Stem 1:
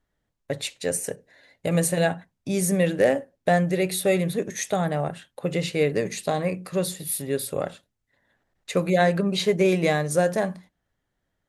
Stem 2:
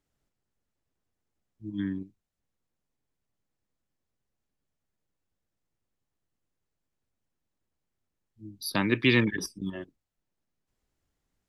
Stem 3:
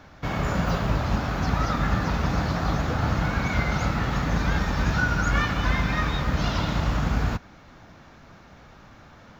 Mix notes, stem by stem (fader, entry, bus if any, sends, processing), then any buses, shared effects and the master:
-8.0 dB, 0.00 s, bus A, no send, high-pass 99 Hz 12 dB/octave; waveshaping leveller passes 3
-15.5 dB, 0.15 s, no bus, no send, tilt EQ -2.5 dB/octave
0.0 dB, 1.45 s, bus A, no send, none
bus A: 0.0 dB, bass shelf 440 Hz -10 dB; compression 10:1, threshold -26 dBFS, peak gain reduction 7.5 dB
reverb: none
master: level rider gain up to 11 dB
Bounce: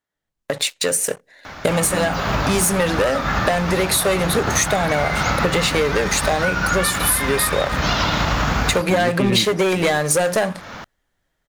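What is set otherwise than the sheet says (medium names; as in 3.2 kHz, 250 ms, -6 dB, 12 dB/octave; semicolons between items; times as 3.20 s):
stem 1 -8.0 dB -> +3.0 dB; stem 3 0.0 dB -> +7.5 dB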